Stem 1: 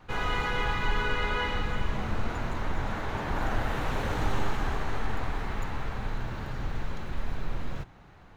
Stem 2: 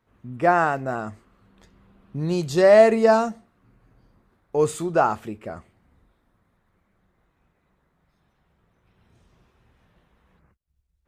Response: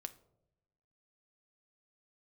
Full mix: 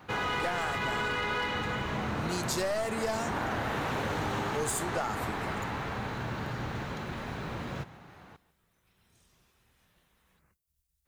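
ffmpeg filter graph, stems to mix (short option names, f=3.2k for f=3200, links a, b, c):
-filter_complex "[0:a]highpass=110,volume=-3.5dB,asplit=2[a][b];[b]volume=-19.5dB[c];[1:a]crystalizer=i=6.5:c=0,volume=-18.5dB,asplit=2[d][e];[e]volume=-7.5dB[f];[2:a]atrim=start_sample=2205[g];[f][g]afir=irnorm=-1:irlink=0[h];[c]aecho=0:1:145:1[i];[a][d][h][i]amix=inputs=4:normalize=0,acontrast=73,aeval=exprs='clip(val(0),-1,0.0668)':c=same,acompressor=threshold=-28dB:ratio=6"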